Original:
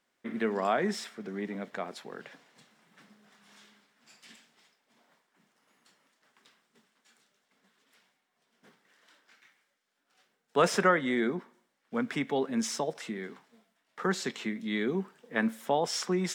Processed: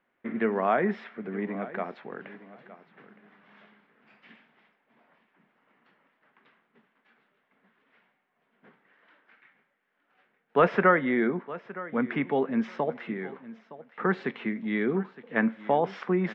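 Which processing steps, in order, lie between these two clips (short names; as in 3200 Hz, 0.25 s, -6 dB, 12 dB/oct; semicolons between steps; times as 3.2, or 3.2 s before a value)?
LPF 2500 Hz 24 dB/oct; on a send: feedback echo 0.915 s, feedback 18%, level -17 dB; on the sum: gain +3.5 dB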